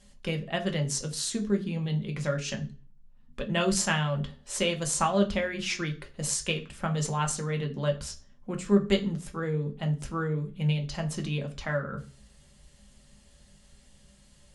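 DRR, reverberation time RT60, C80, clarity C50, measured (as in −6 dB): 3.0 dB, 0.40 s, 20.0 dB, 14.5 dB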